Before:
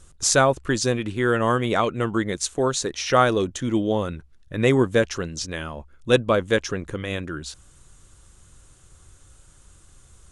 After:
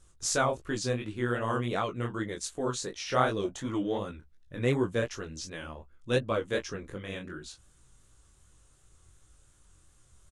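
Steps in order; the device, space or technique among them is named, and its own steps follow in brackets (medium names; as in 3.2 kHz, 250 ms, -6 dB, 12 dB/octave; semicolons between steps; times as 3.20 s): double-tracked vocal (doubling 16 ms -10 dB; chorus 2.7 Hz, delay 18.5 ms, depth 7.3 ms); 3.43–3.97 s: peaking EQ 590 Hz -> 2 kHz +14 dB 0.81 oct; trim -7 dB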